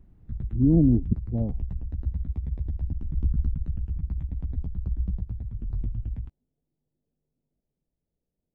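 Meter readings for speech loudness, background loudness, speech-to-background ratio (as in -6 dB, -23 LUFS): -23.5 LUFS, -32.5 LUFS, 9.0 dB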